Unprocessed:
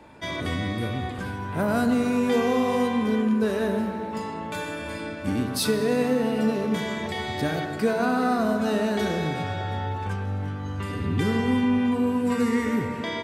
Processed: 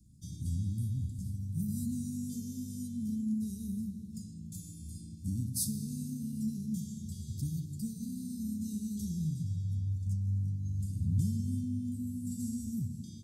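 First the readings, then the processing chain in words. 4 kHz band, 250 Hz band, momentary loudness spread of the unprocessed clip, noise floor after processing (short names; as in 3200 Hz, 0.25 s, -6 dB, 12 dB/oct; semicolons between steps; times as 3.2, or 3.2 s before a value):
-19.0 dB, -11.5 dB, 9 LU, -47 dBFS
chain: inverse Chebyshev band-stop 590–2000 Hz, stop band 70 dB; gain -2 dB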